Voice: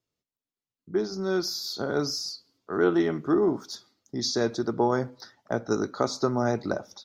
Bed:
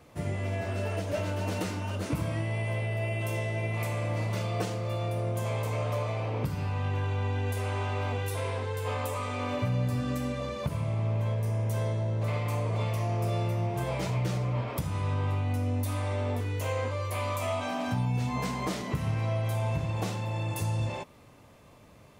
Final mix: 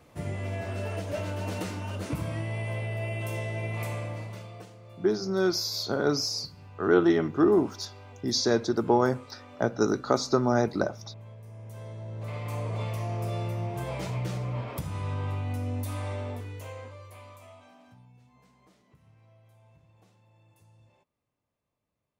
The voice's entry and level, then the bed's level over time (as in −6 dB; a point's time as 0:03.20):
4.10 s, +1.5 dB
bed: 0:03.93 −1.5 dB
0:04.73 −17 dB
0:11.44 −17 dB
0:12.60 −2.5 dB
0:16.09 −2.5 dB
0:18.30 −30 dB